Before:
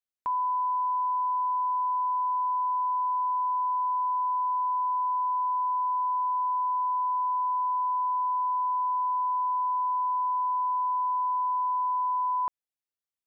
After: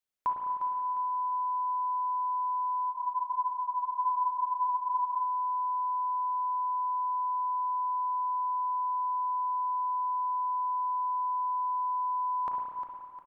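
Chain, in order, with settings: feedback delay 354 ms, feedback 42%, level -10 dB; spring tank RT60 2.3 s, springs 34/51/58 ms, chirp 75 ms, DRR 0 dB; spectral freeze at 2.91 s, 2.30 s; trim +1.5 dB

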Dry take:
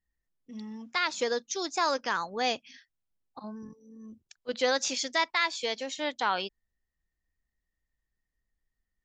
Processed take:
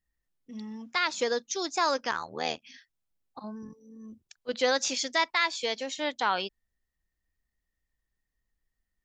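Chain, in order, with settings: 2.11–2.62 s: AM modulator 79 Hz, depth 100%; trim +1 dB

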